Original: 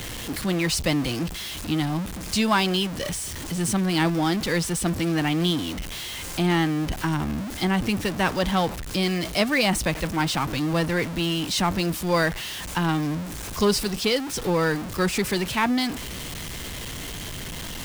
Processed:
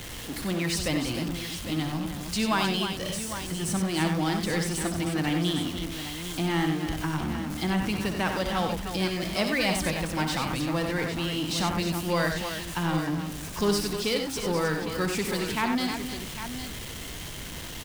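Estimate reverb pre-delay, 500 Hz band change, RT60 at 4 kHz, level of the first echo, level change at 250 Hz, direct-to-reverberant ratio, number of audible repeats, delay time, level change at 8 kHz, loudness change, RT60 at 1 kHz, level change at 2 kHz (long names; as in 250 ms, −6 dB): no reverb audible, −3.5 dB, no reverb audible, −9.5 dB, −3.5 dB, no reverb audible, 4, 64 ms, −3.5 dB, −3.5 dB, no reverb audible, −3.5 dB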